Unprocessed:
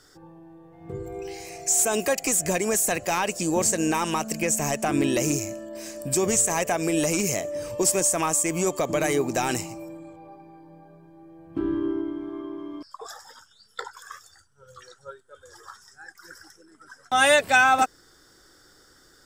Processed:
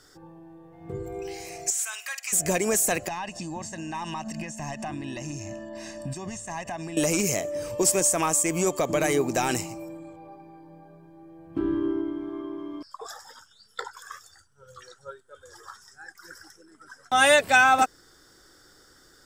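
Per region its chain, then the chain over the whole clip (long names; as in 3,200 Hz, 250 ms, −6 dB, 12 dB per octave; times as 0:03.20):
0:01.70–0:02.33: high-pass filter 1,400 Hz 24 dB per octave + spectral tilt −2.5 dB per octave + flutter between parallel walls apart 8.7 metres, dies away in 0.23 s
0:03.08–0:06.97: downward compressor 12 to 1, threshold −30 dBFS + high-frequency loss of the air 83 metres + comb filter 1.1 ms, depth 79%
whole clip: no processing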